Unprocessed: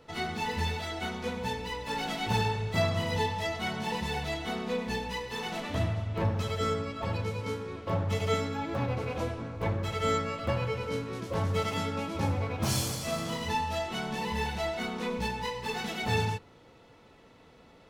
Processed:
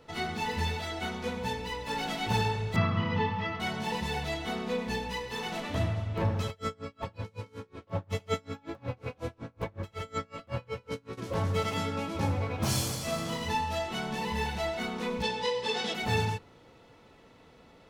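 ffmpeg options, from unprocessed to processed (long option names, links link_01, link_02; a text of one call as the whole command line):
ffmpeg -i in.wav -filter_complex "[0:a]asettb=1/sr,asplit=3[link_01][link_02][link_03];[link_01]atrim=end=2.764[link_04];[link_02]atrim=start=2.76:end=3.6,asetpts=PTS-STARTPTS,afade=type=in:duration=0.004:curve=qsin,afade=type=out:start_time=0.836:duration=0.004:curve=qsin,highpass=110,equalizer=frequency=110:width_type=q:width=4:gain=10,equalizer=frequency=200:width_type=q:width=4:gain=9,equalizer=frequency=630:width_type=q:width=4:gain=-9,equalizer=frequency=1200:width_type=q:width=4:gain=9,equalizer=frequency=3900:width_type=q:width=4:gain=-8,lowpass=frequency=4000:width=0.5412,lowpass=frequency=4000:width=1.3066[link_05];[link_03]atrim=start=3.596[link_06];[link_04][link_05]acrossfade=duration=0.004:curve1=hsin:curve2=qsin[link_07];[link_07][link_06]acrossfade=duration=0.004:curve1=qsin:curve2=hsin,asplit=3[link_08][link_09][link_10];[link_08]afade=type=out:start_time=6.49:duration=0.02[link_11];[link_09]aeval=exprs='val(0)*pow(10,-31*(0.5-0.5*cos(2*PI*5.4*n/s))/20)':channel_layout=same,afade=type=in:start_time=6.49:duration=0.02,afade=type=out:start_time=11.17:duration=0.02[link_12];[link_10]afade=type=in:start_time=11.17:duration=0.02[link_13];[link_11][link_12][link_13]amix=inputs=3:normalize=0,asplit=3[link_14][link_15][link_16];[link_14]afade=type=out:start_time=15.22:duration=0.02[link_17];[link_15]highpass=140,equalizer=frequency=150:width_type=q:width=4:gain=-7,equalizer=frequency=510:width_type=q:width=4:gain=9,equalizer=frequency=3400:width_type=q:width=4:gain=9,equalizer=frequency=5100:width_type=q:width=4:gain=6,lowpass=frequency=9400:width=0.5412,lowpass=frequency=9400:width=1.3066,afade=type=in:start_time=15.22:duration=0.02,afade=type=out:start_time=15.93:duration=0.02[link_18];[link_16]afade=type=in:start_time=15.93:duration=0.02[link_19];[link_17][link_18][link_19]amix=inputs=3:normalize=0" out.wav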